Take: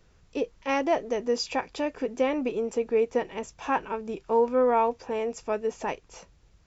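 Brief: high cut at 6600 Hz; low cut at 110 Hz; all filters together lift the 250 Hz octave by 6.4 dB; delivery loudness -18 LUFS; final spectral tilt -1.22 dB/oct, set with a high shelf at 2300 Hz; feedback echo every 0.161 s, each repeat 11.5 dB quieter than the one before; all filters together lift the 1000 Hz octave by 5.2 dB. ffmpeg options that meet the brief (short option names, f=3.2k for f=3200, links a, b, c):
-af "highpass=110,lowpass=6.6k,equalizer=f=250:t=o:g=7,equalizer=f=1k:t=o:g=7,highshelf=f=2.3k:g=-7,aecho=1:1:161|322|483:0.266|0.0718|0.0194,volume=6dB"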